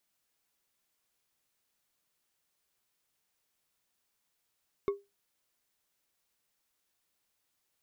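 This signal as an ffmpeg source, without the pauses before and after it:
-f lavfi -i "aevalsrc='0.0708*pow(10,-3*t/0.22)*sin(2*PI*401*t)+0.0224*pow(10,-3*t/0.108)*sin(2*PI*1105.6*t)+0.00708*pow(10,-3*t/0.068)*sin(2*PI*2167*t)+0.00224*pow(10,-3*t/0.048)*sin(2*PI*3582.1*t)+0.000708*pow(10,-3*t/0.036)*sin(2*PI*5349.3*t)':d=0.89:s=44100"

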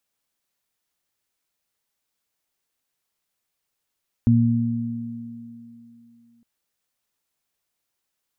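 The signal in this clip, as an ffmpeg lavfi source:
-f lavfi -i "aevalsrc='0.188*pow(10,-3*t/2.2)*sin(2*PI*117*t)+0.188*pow(10,-3*t/3.14)*sin(2*PI*234*t)':d=2.16:s=44100"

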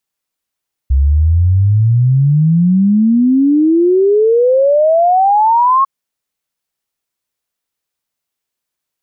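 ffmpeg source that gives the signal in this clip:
-f lavfi -i "aevalsrc='0.447*clip(min(t,4.95-t)/0.01,0,1)*sin(2*PI*65*4.95/log(1100/65)*(exp(log(1100/65)*t/4.95)-1))':d=4.95:s=44100"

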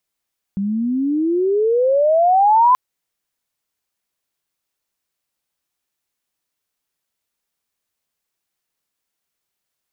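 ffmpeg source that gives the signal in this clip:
-f lavfi -i "aevalsrc='pow(10,(-8.5+9.5*(t/2.18-1))/20)*sin(2*PI*192*2.18/(29*log(2)/12)*(exp(29*log(2)/12*t/2.18)-1))':d=2.18:s=44100"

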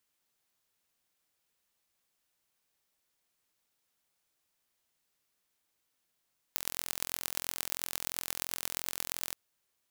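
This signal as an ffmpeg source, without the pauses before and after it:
-f lavfi -i "aevalsrc='0.631*eq(mod(n,1026),0)*(0.5+0.5*eq(mod(n,5130),0))':d=2.77:s=44100"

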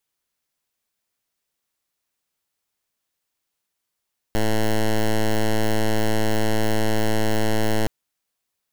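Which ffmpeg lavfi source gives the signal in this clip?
-f lavfi -i "aevalsrc='0.119*(2*lt(mod(109*t,1),0.09)-1)':d=3.52:s=44100"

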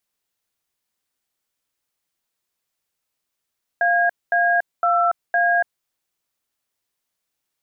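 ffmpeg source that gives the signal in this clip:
-f lavfi -i "aevalsrc='0.133*clip(min(mod(t,0.51),0.285-mod(t,0.51))/0.002,0,1)*(eq(floor(t/0.51),0)*(sin(2*PI*697*mod(t,0.51))+sin(2*PI*1633*mod(t,0.51)))+eq(floor(t/0.51),1)*(sin(2*PI*697*mod(t,0.51))+sin(2*PI*1633*mod(t,0.51)))+eq(floor(t/0.51),2)*(sin(2*PI*697*mod(t,0.51))+sin(2*PI*1336*mod(t,0.51)))+eq(floor(t/0.51),3)*(sin(2*PI*697*mod(t,0.51))+sin(2*PI*1633*mod(t,0.51))))':d=2.04:s=44100"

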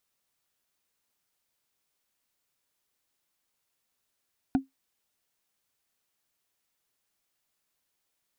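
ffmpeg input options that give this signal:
-f lavfi -i "aevalsrc='0.158*pow(10,-3*t/0.15)*sin(2*PI*268*t)+0.0631*pow(10,-3*t/0.044)*sin(2*PI*738.9*t)+0.0251*pow(10,-3*t/0.02)*sin(2*PI*1448.3*t)+0.01*pow(10,-3*t/0.011)*sin(2*PI*2394*t)+0.00398*pow(10,-3*t/0.007)*sin(2*PI*3575.1*t)':d=0.45:s=44100"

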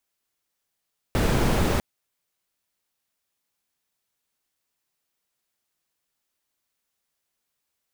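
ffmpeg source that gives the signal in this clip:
-f lavfi -i "anoisesrc=c=brown:a=0.417:d=0.65:r=44100:seed=1"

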